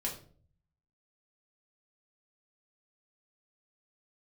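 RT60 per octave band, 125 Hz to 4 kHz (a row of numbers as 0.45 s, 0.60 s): 0.95 s, 0.65 s, 0.55 s, 0.40 s, 0.35 s, 0.35 s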